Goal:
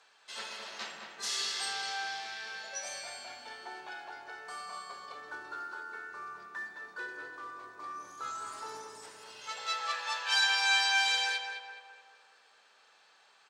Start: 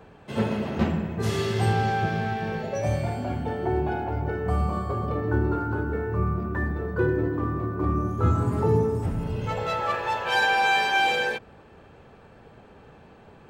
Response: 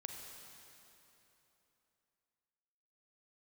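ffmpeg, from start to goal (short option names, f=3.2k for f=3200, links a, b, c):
-filter_complex "[0:a]asuperpass=centerf=3600:order=4:qfactor=0.51,highshelf=f=3.4k:t=q:w=1.5:g=8,asplit=2[a][b];[b]adelay=210,lowpass=f=2.3k:p=1,volume=-5dB,asplit=2[c][d];[d]adelay=210,lowpass=f=2.3k:p=1,volume=0.54,asplit=2[e][f];[f]adelay=210,lowpass=f=2.3k:p=1,volume=0.54,asplit=2[g][h];[h]adelay=210,lowpass=f=2.3k:p=1,volume=0.54,asplit=2[i][j];[j]adelay=210,lowpass=f=2.3k:p=1,volume=0.54,asplit=2[k][l];[l]adelay=210,lowpass=f=2.3k:p=1,volume=0.54,asplit=2[m][n];[n]adelay=210,lowpass=f=2.3k:p=1,volume=0.54[o];[a][c][e][g][i][k][m][o]amix=inputs=8:normalize=0,volume=-3dB"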